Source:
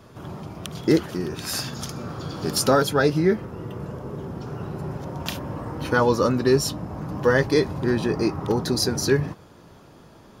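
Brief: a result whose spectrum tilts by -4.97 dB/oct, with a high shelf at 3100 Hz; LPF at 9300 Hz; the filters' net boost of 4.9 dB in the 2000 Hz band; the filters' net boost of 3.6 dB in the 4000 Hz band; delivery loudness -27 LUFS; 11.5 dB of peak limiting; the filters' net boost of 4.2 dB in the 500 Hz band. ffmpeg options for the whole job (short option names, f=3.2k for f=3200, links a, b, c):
-af "lowpass=9.3k,equalizer=f=500:t=o:g=5,equalizer=f=2k:t=o:g=6.5,highshelf=f=3.1k:g=-6,equalizer=f=4k:t=o:g=8.5,volume=-1.5dB,alimiter=limit=-14.5dB:level=0:latency=1"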